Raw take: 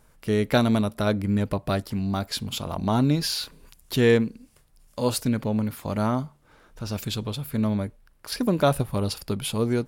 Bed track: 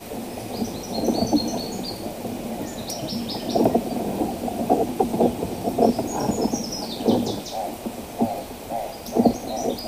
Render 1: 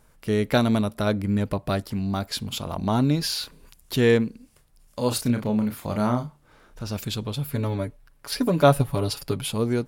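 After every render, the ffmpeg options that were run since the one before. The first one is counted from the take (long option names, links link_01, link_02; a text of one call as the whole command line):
ffmpeg -i in.wav -filter_complex "[0:a]asettb=1/sr,asplit=3[link_01][link_02][link_03];[link_01]atrim=end=5.084[link_04];[link_02]atrim=start=5.08:end=6.83,asetpts=PTS-STARTPTS,afade=type=in:duration=0.004:curve=qsin,afade=type=out:start_time=1.746:duration=0.004:curve=qsin,asplit=2[link_05][link_06];[link_06]adelay=33,volume=-7dB[link_07];[link_05][link_07]amix=inputs=2:normalize=0,atrim=end_sample=77175[link_08];[link_03]atrim=start=6.826[link_09];[link_04][link_08]acrossfade=duration=0.004:curve1=hsin:curve2=qsin[link_10];[link_10][link_09]acrossfade=duration=0.004:curve1=qsin:curve2=hsin,asettb=1/sr,asplit=3[link_11][link_12][link_13];[link_11]atrim=end=7.364[link_14];[link_12]atrim=start=7.36:end=9.42,asetpts=PTS-STARTPTS,afade=type=in:duration=0.004:curve=qsin,afade=type=out:start_time=2.056:duration=0.004:curve=qsin,aecho=1:1:7.1:0.72,atrim=end_sample=90846[link_15];[link_13]atrim=start=9.416[link_16];[link_14][link_15]acrossfade=duration=0.004:curve1=hsin:curve2=qsin[link_17];[link_17][link_16]acrossfade=duration=0.004:curve1=qsin:curve2=hsin" out.wav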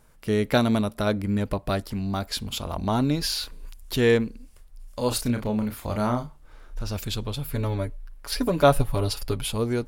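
ffmpeg -i in.wav -af "asubboost=boost=8:cutoff=51" out.wav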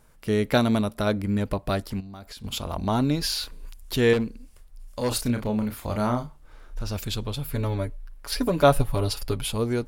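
ffmpeg -i in.wav -filter_complex "[0:a]asettb=1/sr,asplit=3[link_01][link_02][link_03];[link_01]atrim=end=2.004[link_04];[link_02]atrim=start=2:end=2.44,asetpts=PTS-STARTPTS,afade=type=in:duration=0.004:curve=qsin,afade=type=out:start_time=0.436:duration=0.004:curve=qsin,acompressor=threshold=-38dB:ratio=8:attack=3.2:release=140:knee=1:detection=peak[link_05];[link_03]atrim=start=2.436[link_06];[link_04][link_05]acrossfade=duration=0.004:curve1=hsin:curve2=qsin[link_07];[link_07][link_06]acrossfade=duration=0.004:curve1=qsin:curve2=hsin,asettb=1/sr,asplit=3[link_08][link_09][link_10];[link_08]atrim=end=4.134[link_11];[link_09]atrim=start=4.13:end=5.12,asetpts=PTS-STARTPTS,afade=type=in:duration=0.004:curve=qsin,afade=type=out:start_time=0.986:duration=0.004:curve=qsin,volume=19.5dB,asoftclip=hard,volume=-19.5dB[link_12];[link_10]atrim=start=5.116[link_13];[link_11][link_12]acrossfade=duration=0.004:curve1=hsin:curve2=qsin[link_14];[link_14][link_13]acrossfade=duration=0.004:curve1=qsin:curve2=hsin" out.wav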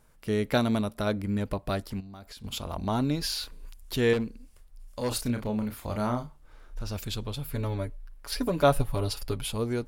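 ffmpeg -i in.wav -af "volume=-4dB" out.wav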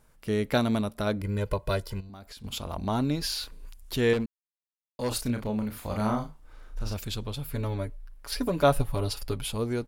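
ffmpeg -i in.wav -filter_complex "[0:a]asettb=1/sr,asplit=3[link_01][link_02][link_03];[link_01]atrim=end=1.214[link_04];[link_02]atrim=start=1.21:end=2.1,asetpts=PTS-STARTPTS,afade=type=in:duration=0.004:curve=qsin,afade=type=out:start_time=0.886:duration=0.004:curve=qsin,aecho=1:1:2:0.79,atrim=end_sample=39249[link_05];[link_03]atrim=start=2.096[link_06];[link_04][link_05]acrossfade=duration=0.004:curve1=hsin:curve2=qsin[link_07];[link_07][link_06]acrossfade=duration=0.004:curve1=qsin:curve2=hsin,asplit=3[link_08][link_09][link_10];[link_08]afade=type=out:start_time=5.73:duration=0.02[link_11];[link_09]asplit=2[link_12][link_13];[link_13]adelay=37,volume=-4.5dB[link_14];[link_12][link_14]amix=inputs=2:normalize=0,afade=type=in:start_time=5.73:duration=0.02,afade=type=out:start_time=6.93:duration=0.02[link_15];[link_10]afade=type=in:start_time=6.93:duration=0.02[link_16];[link_11][link_15][link_16]amix=inputs=3:normalize=0,asplit=3[link_17][link_18][link_19];[link_17]atrim=end=4.26,asetpts=PTS-STARTPTS,afade=type=out:start_time=4.256:duration=0.004:curve=hsin[link_20];[link_18]atrim=start=4.26:end=4.99,asetpts=PTS-STARTPTS,volume=0[link_21];[link_19]atrim=start=4.99,asetpts=PTS-STARTPTS,afade=type=in:duration=0.004:curve=hsin[link_22];[link_20][link_21][link_22]concat=n=3:v=0:a=1" out.wav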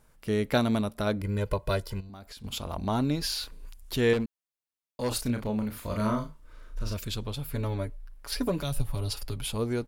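ffmpeg -i in.wav -filter_complex "[0:a]asettb=1/sr,asplit=3[link_01][link_02][link_03];[link_01]atrim=end=5.804[link_04];[link_02]atrim=start=5.8:end=7.16,asetpts=PTS-STARTPTS,afade=type=in:duration=0.004:curve=qsin,afade=type=out:start_time=1.356:duration=0.004:curve=qsin,asuperstop=centerf=790:order=8:qfactor=4.6[link_05];[link_03]atrim=start=7.156[link_06];[link_04][link_05]acrossfade=duration=0.004:curve1=hsin:curve2=qsin[link_07];[link_07][link_06]acrossfade=duration=0.004:curve1=qsin:curve2=hsin,asettb=1/sr,asplit=3[link_08][link_09][link_10];[link_08]atrim=end=8.584[link_11];[link_09]atrim=start=8.58:end=9.47,asetpts=PTS-STARTPTS,afade=type=in:duration=0.004:curve=qsin,afade=type=out:start_time=0.886:duration=0.004:curve=qsin,acrossover=split=160|3000[link_12][link_13][link_14];[link_13]acompressor=threshold=-38dB:ratio=4:attack=3.2:release=140:knee=2.83:detection=peak[link_15];[link_12][link_15][link_14]amix=inputs=3:normalize=0[link_16];[link_10]atrim=start=9.466[link_17];[link_11][link_16]acrossfade=duration=0.004:curve1=hsin:curve2=qsin[link_18];[link_18][link_17]acrossfade=duration=0.004:curve1=qsin:curve2=hsin" out.wav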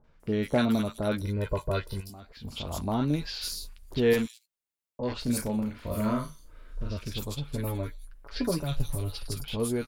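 ffmpeg -i in.wav -filter_complex "[0:a]asplit=2[link_01][link_02];[link_02]adelay=13,volume=-11.5dB[link_03];[link_01][link_03]amix=inputs=2:normalize=0,acrossover=split=1100|4700[link_04][link_05][link_06];[link_05]adelay=40[link_07];[link_06]adelay=200[link_08];[link_04][link_07][link_08]amix=inputs=3:normalize=0" out.wav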